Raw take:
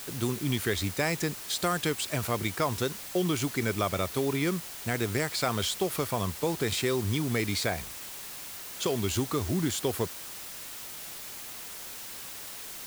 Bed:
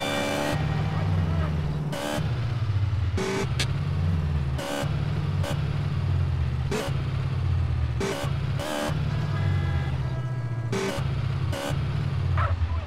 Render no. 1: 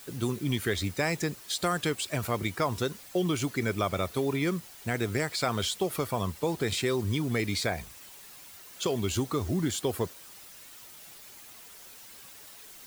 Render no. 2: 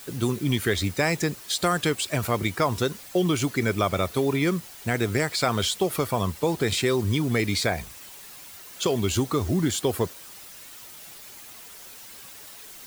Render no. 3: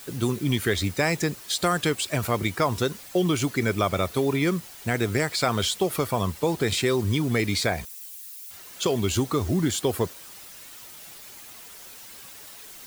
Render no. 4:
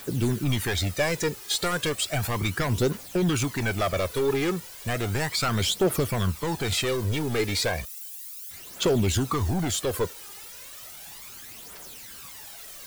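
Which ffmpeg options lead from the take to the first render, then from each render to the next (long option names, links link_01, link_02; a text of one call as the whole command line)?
ffmpeg -i in.wav -af "afftdn=noise_reduction=9:noise_floor=-42" out.wav
ffmpeg -i in.wav -af "volume=5dB" out.wav
ffmpeg -i in.wav -filter_complex "[0:a]asettb=1/sr,asplit=3[link_01][link_02][link_03];[link_01]atrim=end=7.854[link_04];[link_02]atrim=start=7.85:end=8.51,asetpts=PTS-STARTPTS,afade=type=in:duration=0.004:curve=qsin,afade=type=out:start_time=0.656:duration=0.004:curve=qsin,aderivative[link_05];[link_03]atrim=start=8.506[link_06];[link_04][link_05]acrossfade=duration=0.004:curve1=hsin:curve2=qsin[link_07];[link_07][link_06]acrossfade=duration=0.004:curve1=qsin:curve2=hsin" out.wav
ffmpeg -i in.wav -af "asoftclip=type=hard:threshold=-22.5dB,aphaser=in_gain=1:out_gain=1:delay=2.5:decay=0.51:speed=0.34:type=triangular" out.wav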